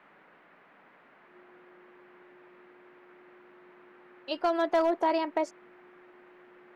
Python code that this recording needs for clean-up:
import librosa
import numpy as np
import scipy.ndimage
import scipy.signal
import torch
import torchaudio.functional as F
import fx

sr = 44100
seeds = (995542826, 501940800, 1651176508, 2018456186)

y = fx.fix_declip(x, sr, threshold_db=-19.0)
y = fx.notch(y, sr, hz=360.0, q=30.0)
y = fx.noise_reduce(y, sr, print_start_s=0.36, print_end_s=0.86, reduce_db=16.0)